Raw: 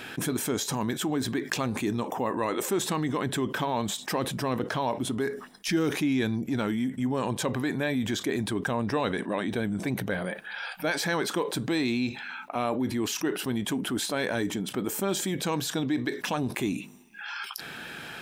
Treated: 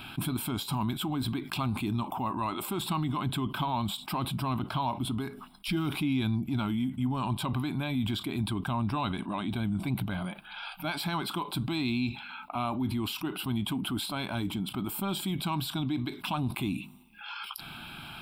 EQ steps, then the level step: bass shelf 82 Hz +11.5 dB; static phaser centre 1.8 kHz, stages 6; 0.0 dB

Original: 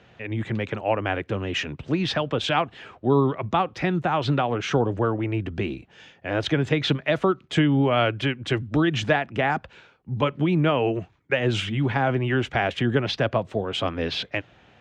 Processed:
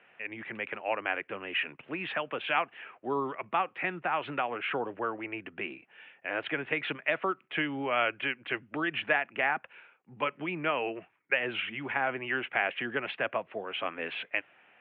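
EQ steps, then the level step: high-pass 170 Hz 12 dB/octave; steep low-pass 2.7 kHz 48 dB/octave; tilt EQ +4.5 dB/octave; -5.5 dB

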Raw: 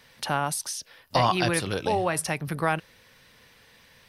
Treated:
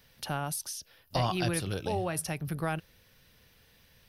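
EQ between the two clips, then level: graphic EQ 125/250/500/1000/2000/4000/8000 Hz -4/-7/-7/-11/-10/-6/-10 dB; +3.5 dB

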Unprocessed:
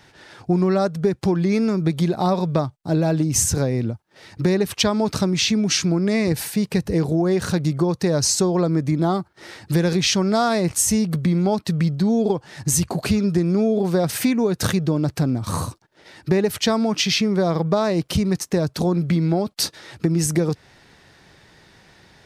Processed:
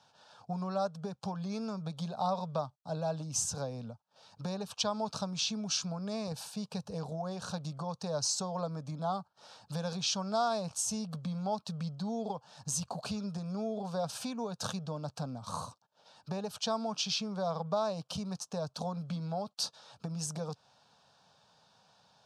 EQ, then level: band-pass 170–6200 Hz; bass shelf 470 Hz -4 dB; static phaser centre 830 Hz, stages 4; -7.5 dB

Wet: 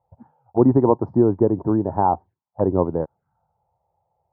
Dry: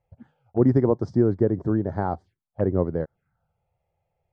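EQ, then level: high-pass 51 Hz; resonant low-pass 930 Hz, resonance Q 4.9; dynamic bell 300 Hz, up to +4 dB, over -33 dBFS, Q 1.8; 0.0 dB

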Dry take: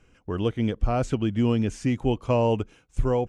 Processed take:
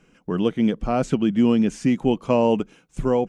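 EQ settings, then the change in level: resonant low shelf 130 Hz -8.5 dB, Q 3; +3.0 dB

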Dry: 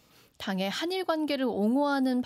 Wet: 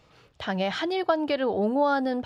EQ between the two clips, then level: tape spacing loss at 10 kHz 21 dB; peaking EQ 240 Hz -10 dB 0.82 oct; +7.5 dB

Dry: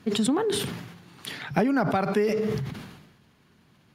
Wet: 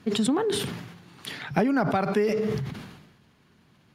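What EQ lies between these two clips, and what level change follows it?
treble shelf 12 kHz -5 dB; 0.0 dB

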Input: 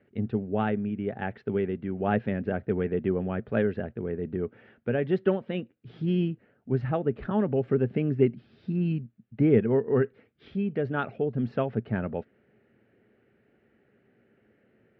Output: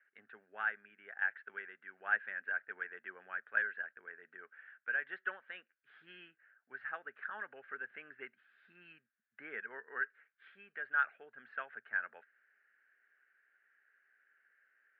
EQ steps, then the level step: ladder band-pass 1.7 kHz, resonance 75%; distance through air 200 m; +6.5 dB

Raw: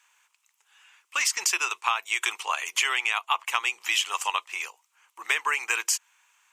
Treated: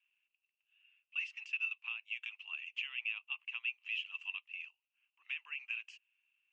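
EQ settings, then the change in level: band-pass filter 2.7 kHz, Q 16; distance through air 120 m; -3.0 dB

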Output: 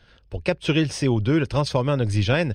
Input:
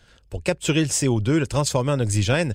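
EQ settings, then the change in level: Savitzky-Golay filter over 15 samples; 0.0 dB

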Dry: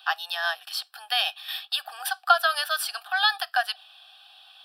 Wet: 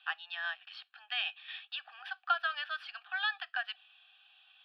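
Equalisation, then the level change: band-pass filter 2.4 kHz, Q 2.1; distance through air 340 m; 0.0 dB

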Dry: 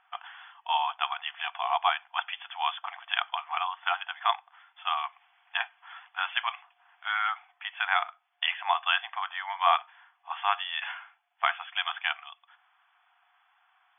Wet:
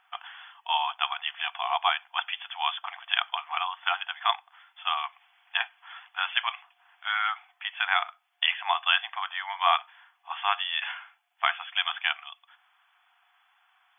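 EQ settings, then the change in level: treble shelf 2.6 kHz +9.5 dB; -1.5 dB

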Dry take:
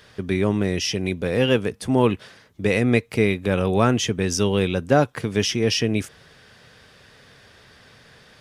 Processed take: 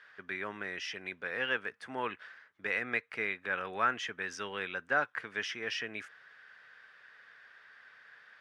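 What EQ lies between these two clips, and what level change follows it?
band-pass filter 1.6 kHz, Q 3; 0.0 dB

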